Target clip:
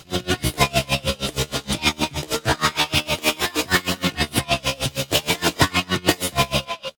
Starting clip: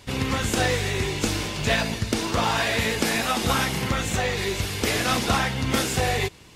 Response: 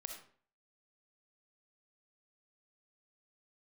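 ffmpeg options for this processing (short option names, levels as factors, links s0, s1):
-filter_complex "[0:a]asplit=2[s0][s1];[s1]adelay=230,highpass=300,lowpass=3400,asoftclip=type=hard:threshold=0.106,volume=0.447[s2];[s0][s2]amix=inputs=2:normalize=0,asetrate=60591,aresample=44100,atempo=0.727827,equalizer=f=3200:w=1.7:g=3.5,atempo=0.94,aeval=exprs='val(0)*pow(10,-27*(0.5-0.5*cos(2*PI*6.4*n/s))/20)':c=same,volume=2.37"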